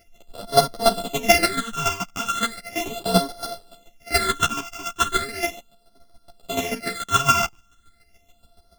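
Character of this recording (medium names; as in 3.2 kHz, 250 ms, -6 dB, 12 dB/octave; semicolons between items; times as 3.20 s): a buzz of ramps at a fixed pitch in blocks of 64 samples; phasing stages 8, 0.37 Hz, lowest notch 540–2400 Hz; chopped level 7 Hz, depth 65%, duty 15%; a shimmering, thickened sound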